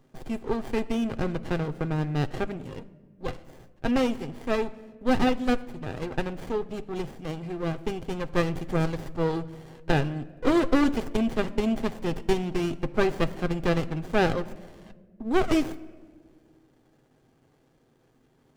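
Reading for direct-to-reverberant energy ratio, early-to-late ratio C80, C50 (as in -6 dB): 10.5 dB, 20.0 dB, 18.5 dB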